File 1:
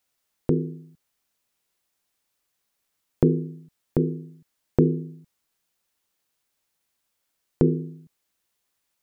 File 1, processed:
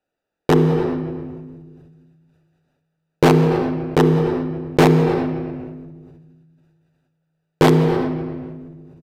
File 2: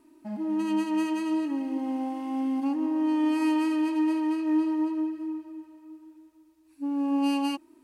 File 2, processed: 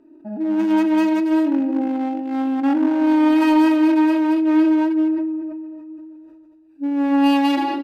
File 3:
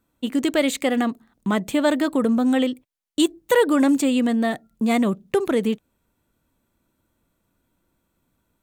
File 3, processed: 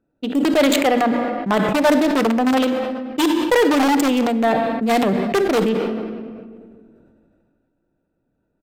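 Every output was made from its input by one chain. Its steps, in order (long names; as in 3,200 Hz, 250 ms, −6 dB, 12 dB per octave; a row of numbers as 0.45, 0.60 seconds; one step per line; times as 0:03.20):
adaptive Wiener filter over 41 samples
in parallel at −7 dB: wrap-around overflow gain 15 dB
on the sum: bad sample-rate conversion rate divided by 2×, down filtered, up zero stuff
mains-hum notches 60/120/180/240/300 Hz
dynamic equaliser 750 Hz, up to +5 dB, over −39 dBFS, Q 2
rectangular room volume 2,000 cubic metres, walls mixed, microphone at 0.41 metres
downsampling to 32,000 Hz
mid-hump overdrive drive 14 dB, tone 3,400 Hz, clips at −4 dBFS
level that may fall only so fast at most 26 dB per second
loudness normalisation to −18 LKFS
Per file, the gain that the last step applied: +4.0, +3.5, −1.5 decibels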